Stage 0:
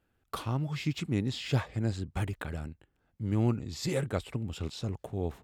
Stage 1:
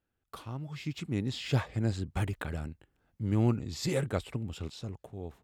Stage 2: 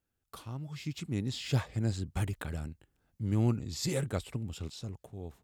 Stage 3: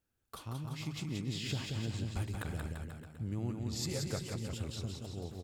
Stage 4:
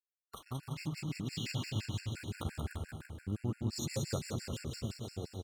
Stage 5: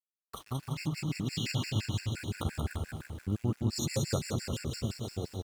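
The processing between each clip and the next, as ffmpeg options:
ffmpeg -i in.wav -af "dynaudnorm=framelen=320:gausssize=7:maxgain=10dB,volume=-9dB" out.wav
ffmpeg -i in.wav -af "bass=frequency=250:gain=3,treble=frequency=4000:gain=7,volume=-3.5dB" out.wav
ffmpeg -i in.wav -af "acompressor=threshold=-36dB:ratio=4,aecho=1:1:180|342|487.8|619|737.1:0.631|0.398|0.251|0.158|0.1" out.wav
ffmpeg -i in.wav -af "aeval=exprs='sgn(val(0))*max(abs(val(0))-0.002,0)':channel_layout=same,aecho=1:1:295|590|885|1180|1475|1770:0.398|0.195|0.0956|0.0468|0.023|0.0112,afftfilt=real='re*gt(sin(2*PI*5.8*pts/sr)*(1-2*mod(floor(b*sr/1024/1400),2)),0)':imag='im*gt(sin(2*PI*5.8*pts/sr)*(1-2*mod(floor(b*sr/1024/1400),2)),0)':win_size=1024:overlap=0.75,volume=3dB" out.wav
ffmpeg -i in.wav -af "aeval=exprs='val(0)*gte(abs(val(0)),0.00112)':channel_layout=same,volume=5dB" out.wav

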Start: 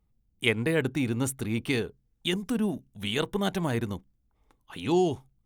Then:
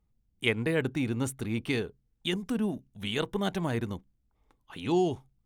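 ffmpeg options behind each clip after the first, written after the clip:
ffmpeg -i in.wav -af "highshelf=frequency=8300:gain=-6.5,volume=-2dB" out.wav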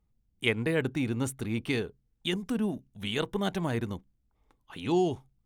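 ffmpeg -i in.wav -af anull out.wav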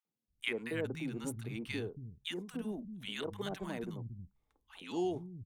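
ffmpeg -i in.wav -filter_complex "[0:a]acrossover=split=180|1000[link_01][link_02][link_03];[link_02]adelay=50[link_04];[link_01]adelay=280[link_05];[link_05][link_04][link_03]amix=inputs=3:normalize=0,volume=-7.5dB" out.wav

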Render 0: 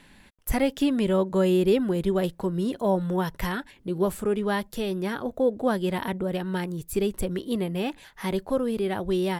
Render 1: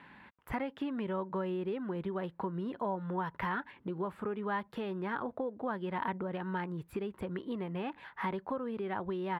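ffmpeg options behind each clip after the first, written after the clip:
ffmpeg -i in.wav -af "highpass=99,acompressor=threshold=-33dB:ratio=4,firequalizer=gain_entry='entry(650,0);entry(930,9);entry(6200,-22)':delay=0.05:min_phase=1,volume=-2.5dB" out.wav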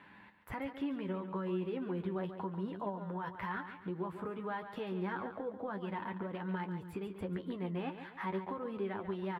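ffmpeg -i in.wav -filter_complex "[0:a]alimiter=level_in=4dB:limit=-24dB:level=0:latency=1:release=85,volume=-4dB,flanger=delay=9.9:depth=1.4:regen=33:speed=0.33:shape=sinusoidal,asplit=2[link_01][link_02];[link_02]aecho=0:1:141|282|423|564:0.316|0.123|0.0481|0.0188[link_03];[link_01][link_03]amix=inputs=2:normalize=0,volume=1.5dB" out.wav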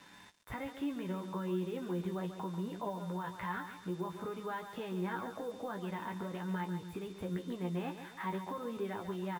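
ffmpeg -i in.wav -filter_complex "[0:a]aeval=exprs='val(0)+0.000631*sin(2*PI*3600*n/s)':channel_layout=same,asplit=2[link_01][link_02];[link_02]adelay=17,volume=-7.5dB[link_03];[link_01][link_03]amix=inputs=2:normalize=0,acrusher=bits=8:mix=0:aa=0.5,volume=-1dB" out.wav

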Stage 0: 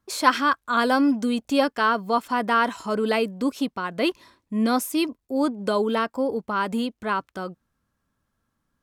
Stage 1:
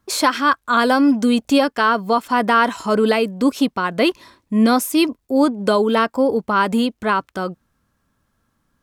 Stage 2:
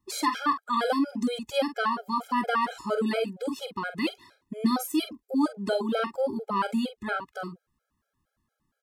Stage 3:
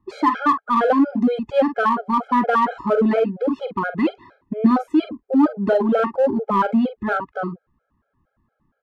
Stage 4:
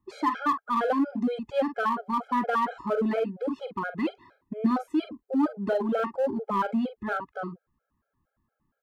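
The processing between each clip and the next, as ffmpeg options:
ffmpeg -i in.wav -af "alimiter=limit=-14dB:level=0:latency=1:release=352,volume=8dB" out.wav
ffmpeg -i in.wav -filter_complex "[0:a]asplit=2[link_01][link_02];[link_02]adelay=45,volume=-9.5dB[link_03];[link_01][link_03]amix=inputs=2:normalize=0,afftfilt=real='re*gt(sin(2*PI*4.3*pts/sr)*(1-2*mod(floor(b*sr/1024/420),2)),0)':imag='im*gt(sin(2*PI*4.3*pts/sr)*(1-2*mod(floor(b*sr/1024/420),2)),0)':win_size=1024:overlap=0.75,volume=-8dB" out.wav
ffmpeg -i in.wav -filter_complex "[0:a]lowpass=1400,asplit=2[link_01][link_02];[link_02]asoftclip=type=hard:threshold=-28.5dB,volume=-8.5dB[link_03];[link_01][link_03]amix=inputs=2:normalize=0,volume=8dB" out.wav
ffmpeg -i in.wav -af "highshelf=frequency=2600:gain=-10.5,crystalizer=i=5.5:c=0,volume=-9dB" out.wav

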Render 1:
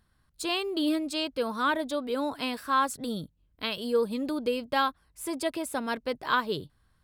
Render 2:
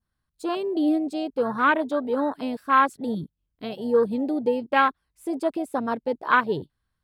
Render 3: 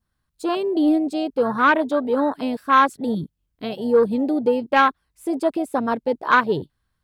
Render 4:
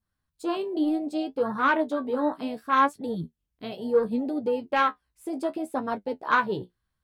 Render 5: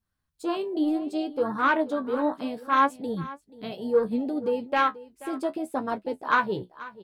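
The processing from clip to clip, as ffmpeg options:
ffmpeg -i in.wav -af "afwtdn=0.0282,adynamicequalizer=threshold=0.01:dfrequency=2800:dqfactor=0.82:tfrequency=2800:tqfactor=0.82:attack=5:release=100:ratio=0.375:range=2.5:mode=boostabove:tftype=bell,volume=5.5dB" out.wav
ffmpeg -i in.wav -af "acontrast=65,volume=-2dB" out.wav
ffmpeg -i in.wav -af "flanger=delay=9.5:depth=7.6:regen=43:speed=0.67:shape=triangular,volume=-2.5dB" out.wav
ffmpeg -i in.wav -af "aecho=1:1:483:0.126" out.wav

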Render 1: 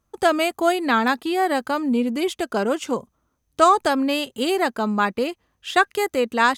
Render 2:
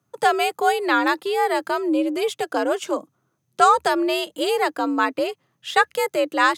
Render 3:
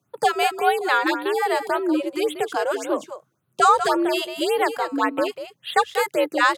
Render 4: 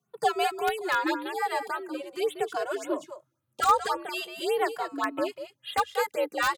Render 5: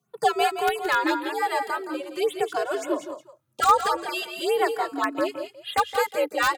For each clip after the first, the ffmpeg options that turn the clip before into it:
ffmpeg -i in.wav -af "afreqshift=73" out.wav
ffmpeg -i in.wav -af "aecho=1:1:193:0.316,afftfilt=real='re*(1-between(b*sr/1024,220*pow(6700/220,0.5+0.5*sin(2*PI*1.8*pts/sr))/1.41,220*pow(6700/220,0.5+0.5*sin(2*PI*1.8*pts/sr))*1.41))':imag='im*(1-between(b*sr/1024,220*pow(6700/220,0.5+0.5*sin(2*PI*1.8*pts/sr))/1.41,220*pow(6700/220,0.5+0.5*sin(2*PI*1.8*pts/sr))*1.41))':win_size=1024:overlap=0.75" out.wav
ffmpeg -i in.wav -filter_complex "[0:a]asplit=2[link_01][link_02];[link_02]aeval=exprs='(mod(2.24*val(0)+1,2)-1)/2.24':channel_layout=same,volume=-4.5dB[link_03];[link_01][link_03]amix=inputs=2:normalize=0,asplit=2[link_04][link_05];[link_05]adelay=2.2,afreqshift=-0.45[link_06];[link_04][link_06]amix=inputs=2:normalize=1,volume=-8dB" out.wav
ffmpeg -i in.wav -af "aecho=1:1:169:0.282,volume=3.5dB" out.wav

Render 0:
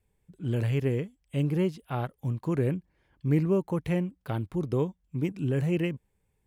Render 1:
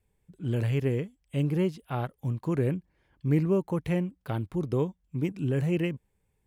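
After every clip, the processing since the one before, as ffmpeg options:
ffmpeg -i in.wav -af anull out.wav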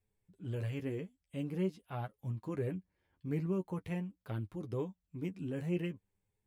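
ffmpeg -i in.wav -af "flanger=delay=9.4:depth=1.8:regen=22:speed=0.45:shape=sinusoidal,volume=-6dB" out.wav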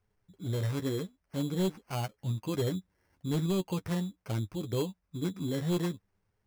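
ffmpeg -i in.wav -af "acrusher=samples=12:mix=1:aa=0.000001,volume=30dB,asoftclip=hard,volume=-30dB,volume=6dB" out.wav

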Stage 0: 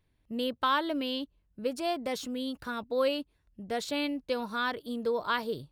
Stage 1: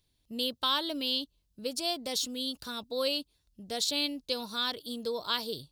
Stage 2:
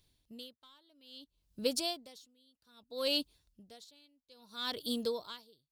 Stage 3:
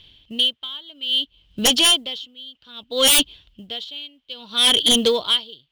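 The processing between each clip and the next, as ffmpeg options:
ffmpeg -i in.wav -af "highshelf=frequency=2800:width_type=q:width=1.5:gain=12,volume=-4dB" out.wav
ffmpeg -i in.wav -filter_complex "[0:a]asplit=2[link_01][link_02];[link_02]aeval=exprs='clip(val(0),-1,0.0531)':channel_layout=same,volume=-4dB[link_03];[link_01][link_03]amix=inputs=2:normalize=0,aeval=exprs='val(0)*pow(10,-37*(0.5-0.5*cos(2*PI*0.61*n/s))/20)':channel_layout=same,volume=-1dB" out.wav
ffmpeg -i in.wav -af "lowpass=frequency=3100:width_type=q:width=12,aeval=exprs='0.376*sin(PI/2*5.62*val(0)/0.376)':channel_layout=same,acrusher=bits=8:mode=log:mix=0:aa=0.000001,volume=-2dB" out.wav

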